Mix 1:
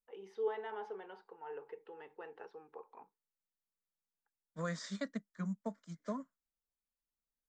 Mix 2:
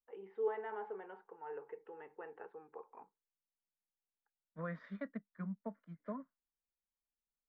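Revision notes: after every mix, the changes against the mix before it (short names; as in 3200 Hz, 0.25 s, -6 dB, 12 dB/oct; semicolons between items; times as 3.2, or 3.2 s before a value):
second voice -3.5 dB; master: add LPF 2300 Hz 24 dB/oct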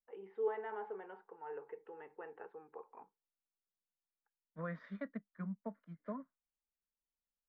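none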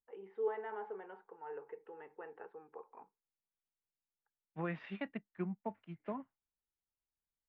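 second voice: remove fixed phaser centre 540 Hz, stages 8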